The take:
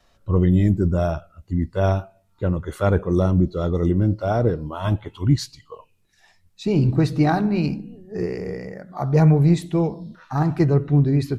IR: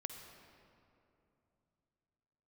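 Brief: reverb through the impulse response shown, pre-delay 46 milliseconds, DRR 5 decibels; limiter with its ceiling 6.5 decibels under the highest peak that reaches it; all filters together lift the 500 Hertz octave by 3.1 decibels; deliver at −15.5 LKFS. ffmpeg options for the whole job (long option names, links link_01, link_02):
-filter_complex "[0:a]equalizer=frequency=500:width_type=o:gain=4,alimiter=limit=-10dB:level=0:latency=1,asplit=2[link_01][link_02];[1:a]atrim=start_sample=2205,adelay=46[link_03];[link_02][link_03]afir=irnorm=-1:irlink=0,volume=-2.5dB[link_04];[link_01][link_04]amix=inputs=2:normalize=0,volume=5dB"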